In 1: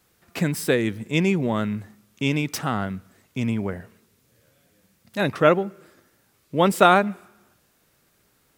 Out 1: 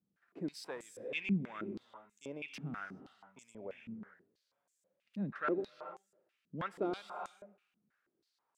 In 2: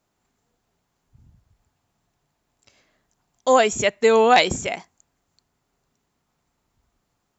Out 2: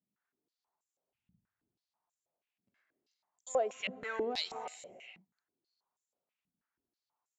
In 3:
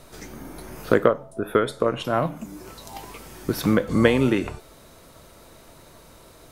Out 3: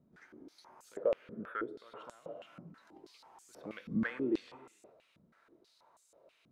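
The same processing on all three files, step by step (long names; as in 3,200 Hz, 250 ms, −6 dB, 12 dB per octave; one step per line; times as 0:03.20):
soft clipping −8 dBFS
reverb whose tail is shaped and stops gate 450 ms rising, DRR 8.5 dB
band-pass on a step sequencer 6.2 Hz 200–7,400 Hz
level −7 dB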